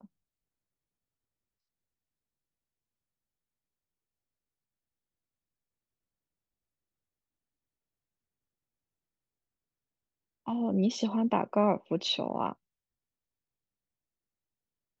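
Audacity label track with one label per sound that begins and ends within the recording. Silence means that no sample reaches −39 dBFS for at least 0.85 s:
10.480000	12.520000	sound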